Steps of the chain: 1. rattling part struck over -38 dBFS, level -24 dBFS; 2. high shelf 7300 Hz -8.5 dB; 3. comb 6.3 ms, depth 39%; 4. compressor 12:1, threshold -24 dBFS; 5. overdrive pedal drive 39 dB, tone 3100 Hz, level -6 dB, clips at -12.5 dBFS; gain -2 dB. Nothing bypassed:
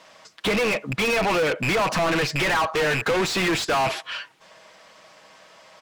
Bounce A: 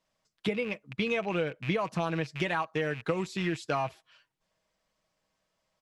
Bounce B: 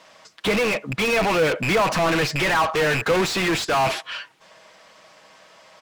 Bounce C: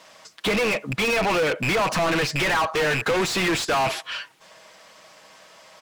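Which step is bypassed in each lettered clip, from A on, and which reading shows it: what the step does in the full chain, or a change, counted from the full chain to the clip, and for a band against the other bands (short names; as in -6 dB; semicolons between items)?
5, crest factor change +9.0 dB; 4, mean gain reduction 6.5 dB; 2, momentary loudness spread change +3 LU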